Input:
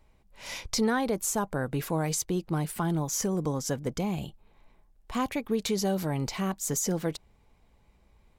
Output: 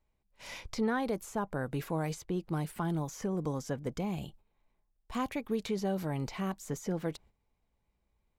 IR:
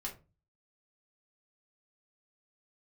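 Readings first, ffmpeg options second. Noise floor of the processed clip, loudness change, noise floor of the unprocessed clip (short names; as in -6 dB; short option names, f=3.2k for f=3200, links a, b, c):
-79 dBFS, -5.5 dB, -64 dBFS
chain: -filter_complex "[0:a]agate=range=-11dB:threshold=-50dB:ratio=16:detection=peak,acrossover=split=3200[a][b];[b]acompressor=threshold=-46dB:ratio=4[c];[a][c]amix=inputs=2:normalize=0,volume=-4.5dB"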